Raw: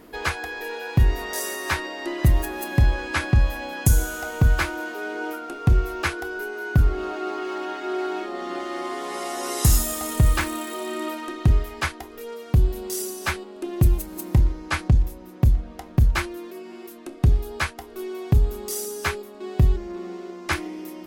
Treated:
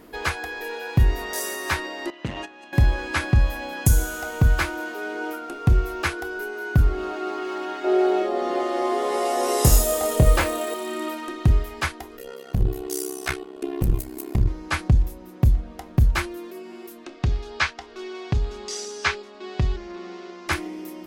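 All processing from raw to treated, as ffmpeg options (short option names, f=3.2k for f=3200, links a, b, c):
-filter_complex "[0:a]asettb=1/sr,asplit=3[a][b][c];[a]atrim=end=2.104[d];[b]atrim=start=2.1:end=2.73,asetpts=PTS-STARTPTS,afade=t=in:d=0.004:c=qsin,afade=t=out:st=0.626:d=0.004:c=qsin,agate=range=-13dB:threshold=-28dB:ratio=16:release=100:detection=peak,asoftclip=type=hard:threshold=-14dB,highpass=200,equalizer=f=380:t=q:w=4:g=-7,equalizer=f=2.8k:t=q:w=4:g=7,equalizer=f=5k:t=q:w=4:g=-4,lowpass=f=6.2k:w=0.5412,lowpass=f=6.2k:w=1.3066[e];[c]atrim=start=2.726[f];[d][e]acrossfade=d=0.004:c1=hsin:c2=qsin[g];[g][f]acrossfade=d=0.004:c1=qsin:c2=hsin,asettb=1/sr,asplit=3[h][i][j];[h]atrim=end=7.844[k];[i]atrim=start=7.84:end=10.74,asetpts=PTS-STARTPTS,afade=t=in:d=0.004:c=qsin,afade=t=out:st=2.896:d=0.004:c=qsin,equalizer=f=530:w=1.4:g=11.5,asplit=2[l][m];[m]adelay=24,volume=-6dB[n];[l][n]amix=inputs=2:normalize=0,atrim=end_sample=127890[o];[j]atrim=start=10.736[p];[k][o]acrossfade=d=0.004:c1=hsin:c2=qsin[q];[q][p]acrossfade=d=0.004:c1=qsin:c2=hsin,asettb=1/sr,asplit=3[r][s][t];[r]atrim=end=12.174[u];[s]atrim=start=12.17:end=14.48,asetpts=PTS-STARTPTS,afade=t=in:d=0.004:c=qsin,afade=t=out:st=2.306:d=0.004:c=qsin,aecho=1:1:2.8:0.92,atrim=end_sample=101871,tremolo=f=66:d=0.974,aeval=exprs='clip(val(0),-1,0.141)':c=same[v];[t]atrim=start=14.476[w];[u][v]acrossfade=d=0.004:c1=hsin:c2=qsin[x];[x][w]acrossfade=d=0.004:c1=qsin:c2=hsin,asettb=1/sr,asplit=3[y][z][aa];[y]atrim=end=17.044[ab];[z]atrim=start=17.04:end=20.48,asetpts=PTS-STARTPTS,afade=t=in:d=0.004:c=qsin,afade=t=out:st=3.436:d=0.004:c=qsin,lowpass=f=6k:w=0.5412,lowpass=f=6k:w=1.3066,tiltshelf=f=750:g=-5.5[ac];[aa]atrim=start=20.476[ad];[ab][ac]acrossfade=d=0.004:c1=hsin:c2=qsin[ae];[ae][ad]acrossfade=d=0.004:c1=qsin:c2=hsin"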